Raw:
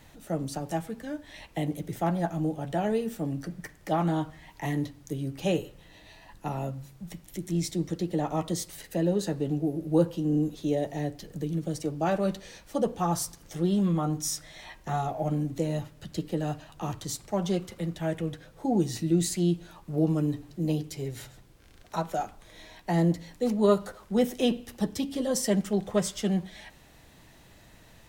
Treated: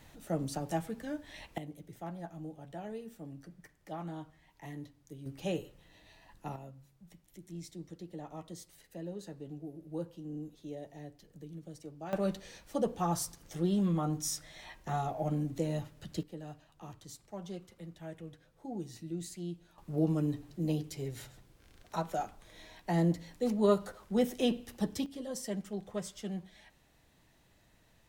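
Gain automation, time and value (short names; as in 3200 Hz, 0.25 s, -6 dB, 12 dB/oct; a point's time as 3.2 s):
-3 dB
from 1.58 s -15 dB
from 5.26 s -8 dB
from 6.56 s -16 dB
from 12.13 s -4.5 dB
from 16.23 s -15 dB
from 19.78 s -4.5 dB
from 25.06 s -12 dB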